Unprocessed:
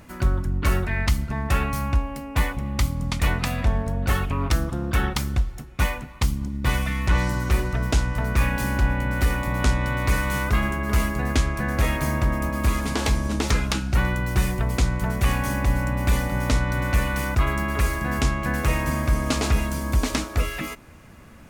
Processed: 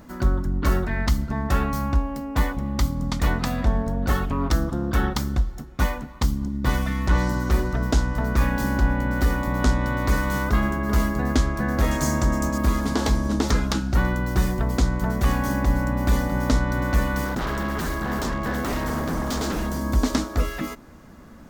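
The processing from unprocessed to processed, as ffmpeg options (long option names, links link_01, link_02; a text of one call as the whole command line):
ffmpeg -i in.wav -filter_complex "[0:a]asettb=1/sr,asplit=3[link_01][link_02][link_03];[link_01]atrim=end=11.914[link_04];[link_02]atrim=start=11.91:end=12.58,asetpts=PTS-STARTPTS,afade=type=in:duration=0.004:curve=qsin,afade=type=out:start_time=0.666:duration=0.004:curve=qsin,equalizer=frequency=6900:width_type=o:width=0.96:gain=14[link_05];[link_03]atrim=start=12.576[link_06];[link_04][link_05]acrossfade=duration=0.004:curve1=hsin:curve2=qsin[link_07];[link_07][link_06]acrossfade=duration=0.004:curve1=qsin:curve2=hsin,asettb=1/sr,asplit=3[link_08][link_09][link_10];[link_08]atrim=end=17.254[link_11];[link_09]atrim=start=17.25:end=19.79,asetpts=PTS-STARTPTS,afade=type=in:duration=0.004:curve=qsin,afade=type=out:start_time=2.536:duration=0.004:curve=qsin,aeval=exprs='0.0891*(abs(mod(val(0)/0.0891+3,4)-2)-1)':channel_layout=same[link_12];[link_10]atrim=start=19.786[link_13];[link_11][link_12]acrossfade=duration=0.004:curve1=hsin:curve2=qsin[link_14];[link_14][link_13]acrossfade=duration=0.004:curve1=qsin:curve2=hsin,equalizer=frequency=100:width_type=o:width=0.67:gain=-7,equalizer=frequency=250:width_type=o:width=0.67:gain=4,equalizer=frequency=2500:width_type=o:width=0.67:gain=-10,equalizer=frequency=10000:width_type=o:width=0.67:gain=-8,volume=1.5dB" out.wav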